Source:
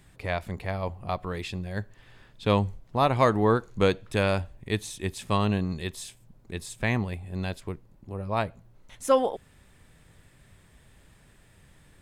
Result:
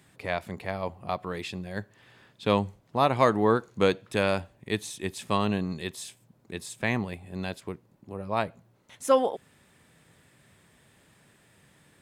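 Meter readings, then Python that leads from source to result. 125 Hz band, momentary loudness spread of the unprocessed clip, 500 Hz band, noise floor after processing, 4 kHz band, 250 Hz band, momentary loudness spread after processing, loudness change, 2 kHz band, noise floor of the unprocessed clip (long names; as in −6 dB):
−5.0 dB, 14 LU, 0.0 dB, −63 dBFS, 0.0 dB, −0.5 dB, 16 LU, −0.5 dB, 0.0 dB, −58 dBFS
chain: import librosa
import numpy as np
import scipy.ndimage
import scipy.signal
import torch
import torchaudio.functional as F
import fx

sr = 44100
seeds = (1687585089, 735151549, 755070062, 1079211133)

y = scipy.signal.sosfilt(scipy.signal.butter(2, 140.0, 'highpass', fs=sr, output='sos'), x)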